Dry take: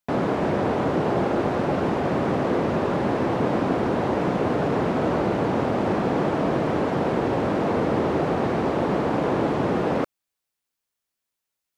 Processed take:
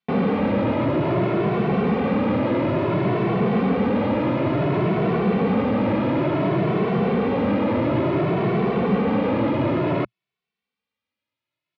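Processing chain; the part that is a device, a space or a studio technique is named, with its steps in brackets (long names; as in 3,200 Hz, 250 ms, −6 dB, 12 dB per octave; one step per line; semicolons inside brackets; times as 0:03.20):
barber-pole flanger into a guitar amplifier (barber-pole flanger 2.2 ms +0.57 Hz; soft clipping −22 dBFS, distortion −15 dB; loudspeaker in its box 80–3,800 Hz, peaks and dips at 120 Hz +6 dB, 200 Hz +6 dB, 780 Hz −4 dB, 1,600 Hz −5 dB, 2,300 Hz +4 dB)
level +6.5 dB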